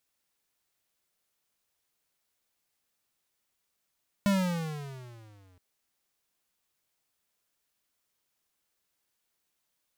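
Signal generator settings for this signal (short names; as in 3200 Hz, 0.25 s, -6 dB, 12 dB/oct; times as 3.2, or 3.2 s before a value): gliding synth tone square, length 1.32 s, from 204 Hz, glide -14.5 st, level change -38 dB, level -23 dB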